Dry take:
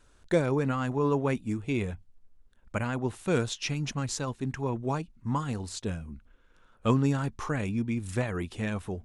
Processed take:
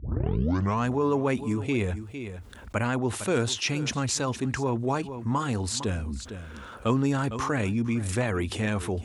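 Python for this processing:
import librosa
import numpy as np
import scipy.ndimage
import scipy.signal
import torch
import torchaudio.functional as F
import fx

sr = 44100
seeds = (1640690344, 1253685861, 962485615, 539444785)

y = fx.tape_start_head(x, sr, length_s=0.88)
y = scipy.signal.sosfilt(scipy.signal.butter(4, 53.0, 'highpass', fs=sr, output='sos'), y)
y = fx.peak_eq(y, sr, hz=160.0, db=-8.5, octaves=0.4)
y = y + 10.0 ** (-20.0 / 20.0) * np.pad(y, (int(456 * sr / 1000.0), 0))[:len(y)]
y = fx.env_flatten(y, sr, amount_pct=50)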